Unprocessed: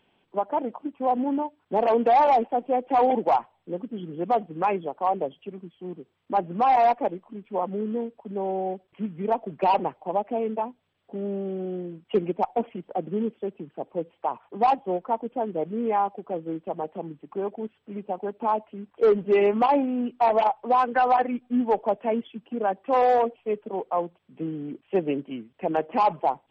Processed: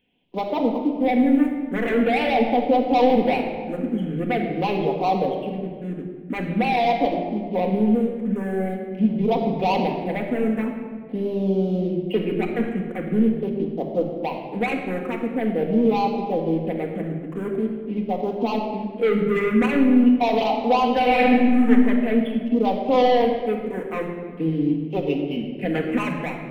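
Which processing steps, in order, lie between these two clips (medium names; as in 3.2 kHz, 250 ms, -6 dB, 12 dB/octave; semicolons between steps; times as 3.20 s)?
24.70–25.37 s: peaking EQ 250 Hz -10 dB 1.6 oct; waveshaping leveller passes 2; phase shifter stages 4, 0.45 Hz, lowest notch 770–1600 Hz; 21.00–21.69 s: reverb throw, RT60 1.1 s, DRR -2.5 dB; simulated room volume 2100 m³, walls mixed, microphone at 1.9 m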